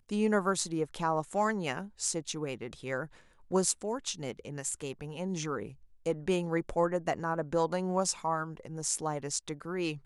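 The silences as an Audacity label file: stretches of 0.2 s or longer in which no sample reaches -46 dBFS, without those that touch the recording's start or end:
3.140000	3.510000	silence
5.730000	6.060000	silence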